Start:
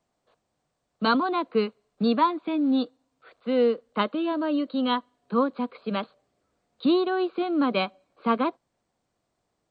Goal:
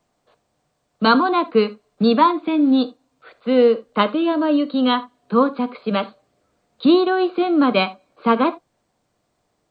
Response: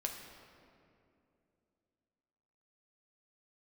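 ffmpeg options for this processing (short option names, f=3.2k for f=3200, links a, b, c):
-filter_complex "[0:a]asplit=2[a][b];[1:a]atrim=start_sample=2205,atrim=end_sample=3969[c];[b][c]afir=irnorm=-1:irlink=0,volume=-2dB[d];[a][d]amix=inputs=2:normalize=0,volume=3dB"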